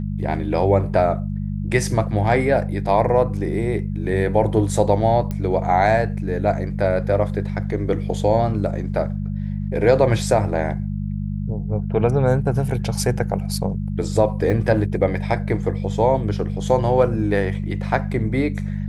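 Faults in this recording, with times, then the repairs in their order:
mains hum 50 Hz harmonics 4 −25 dBFS
0:05.31: click −15 dBFS
0:14.50: drop-out 2.4 ms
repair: click removal
hum removal 50 Hz, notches 4
repair the gap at 0:14.50, 2.4 ms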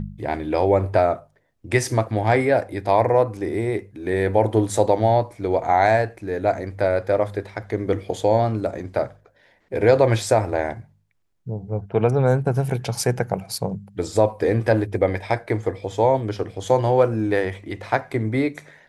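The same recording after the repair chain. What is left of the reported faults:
none of them is left

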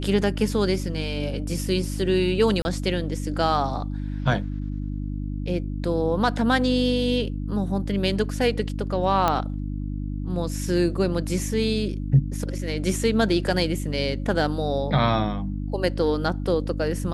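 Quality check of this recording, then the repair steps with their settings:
mains hum 50 Hz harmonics 6 −29 dBFS
0:02.62–0:02.65: drop-out 30 ms
0:09.28: click −8 dBFS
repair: click removal
hum removal 50 Hz, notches 6
repair the gap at 0:02.62, 30 ms

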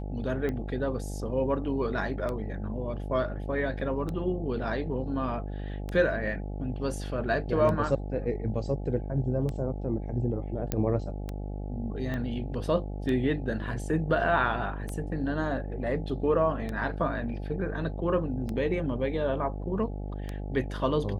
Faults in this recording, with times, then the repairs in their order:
mains buzz 50 Hz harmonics 17 −35 dBFS
scratch tick 33 1/3 rpm −21 dBFS
0:10.72: click −13 dBFS
0:12.14: click −22 dBFS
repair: click removal
hum removal 50 Hz, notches 17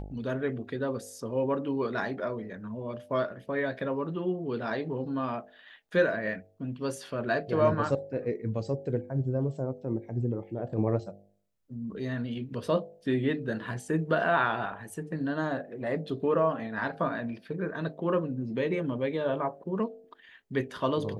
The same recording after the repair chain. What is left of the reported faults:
0:12.14: click

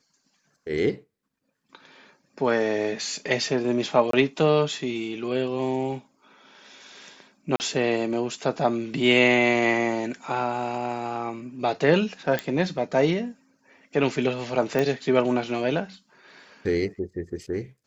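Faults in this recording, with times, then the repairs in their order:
0:04.11–0:04.13: drop-out 23 ms
0:07.56–0:07.60: drop-out 39 ms
0:12.39: click −11 dBFS
0:14.79: click −12 dBFS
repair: click removal
repair the gap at 0:04.11, 23 ms
repair the gap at 0:07.56, 39 ms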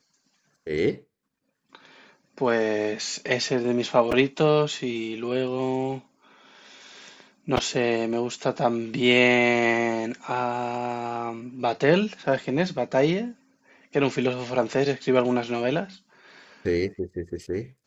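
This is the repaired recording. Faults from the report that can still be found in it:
none of them is left

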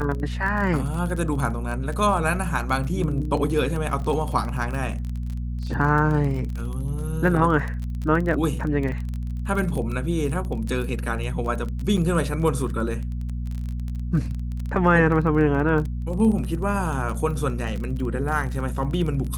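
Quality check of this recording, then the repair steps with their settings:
surface crackle 25 per second −28 dBFS
mains hum 60 Hz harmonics 4 −28 dBFS
0:11.97–0:11.98: drop-out 6.2 ms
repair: click removal
hum removal 60 Hz, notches 4
repair the gap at 0:11.97, 6.2 ms

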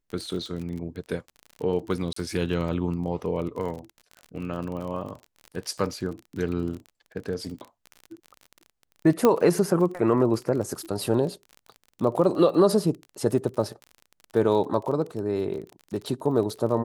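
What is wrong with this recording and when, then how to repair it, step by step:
surface crackle 33 per second −33 dBFS
0:02.13–0:02.16: drop-out 34 ms
0:09.25: click −7 dBFS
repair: click removal
repair the gap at 0:02.13, 34 ms

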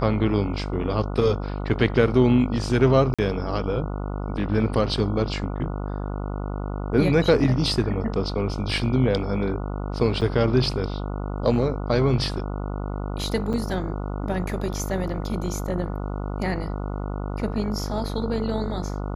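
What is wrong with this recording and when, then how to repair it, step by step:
mains buzz 50 Hz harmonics 29 −29 dBFS
0:03.14–0:03.19: drop-out 46 ms
0:10.21–0:10.22: drop-out 7 ms
0:13.53–0:13.54: drop-out 7 ms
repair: hum removal 50 Hz, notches 29
repair the gap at 0:03.14, 46 ms
repair the gap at 0:10.21, 7 ms
repair the gap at 0:13.53, 7 ms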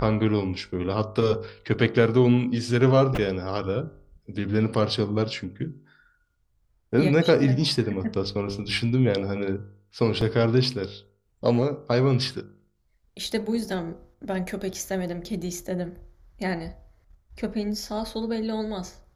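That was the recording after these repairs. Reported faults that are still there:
none of them is left

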